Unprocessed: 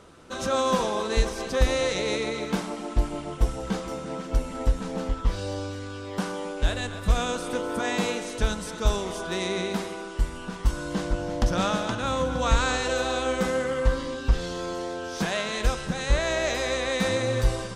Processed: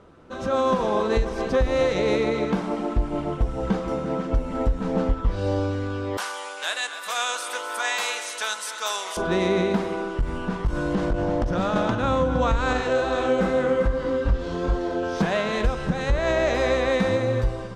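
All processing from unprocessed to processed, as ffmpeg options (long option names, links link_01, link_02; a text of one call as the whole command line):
ffmpeg -i in.wav -filter_complex "[0:a]asettb=1/sr,asplit=3[link_01][link_02][link_03];[link_01]atrim=end=6.174[link_04];[link_02]atrim=start=6.17:end=9.17,asetpts=PTS-STARTPTS,afade=type=in:duration=0.004:curve=qsin,afade=type=out:start_time=2.996:duration=0.004:curve=qsin,highpass=990,aemphasis=mode=production:type=riaa[link_05];[link_03]atrim=start=9.166[link_06];[link_04][link_05]acrossfade=duration=0.004:curve1=hsin:curve2=qsin[link_07];[link_07][link_06]acrossfade=duration=0.004:curve1=qsin:curve2=hsin,asettb=1/sr,asplit=3[link_08][link_09][link_10];[link_08]atrim=end=10.134[link_11];[link_09]atrim=start=10.13:end=11.76,asetpts=PTS-STARTPTS,afade=type=in:duration=0.004:curve=qsin,afade=type=out:start_time=1.626:duration=0.004:curve=qsin,acompressor=threshold=-26dB:ratio=4:attack=3.2:release=140:knee=1:detection=peak,aeval=exprs='clip(val(0),-1,0.0335)':channel_layout=same[link_12];[link_10]atrim=start=11.756[link_13];[link_11][link_12]acrossfade=duration=0.004:curve1=hsin:curve2=qsin[link_14];[link_14][link_13]acrossfade=duration=0.004:curve1=qsin:curve2=hsin,asettb=1/sr,asplit=3[link_15][link_16][link_17];[link_15]atrim=end=12.734[link_18];[link_16]atrim=start=12.73:end=15.03,asetpts=PTS-STARTPTS,afade=type=in:duration=0.004:curve=qsin,afade=type=out:start_time=2.296:duration=0.004:curve=qsin,flanger=delay=19.5:depth=3.8:speed=2.4,aecho=1:1:398:0.422,atrim=end_sample=101430[link_19];[link_17]atrim=start=15.026[link_20];[link_18][link_19]acrossfade=duration=0.004:curve1=hsin:curve2=qsin[link_21];[link_21][link_20]acrossfade=duration=0.004:curve1=qsin:curve2=hsin,lowpass=frequency=1300:poles=1,dynaudnorm=framelen=110:gausssize=13:maxgain=8dB,alimiter=limit=-13dB:level=0:latency=1:release=197,volume=1dB" out.wav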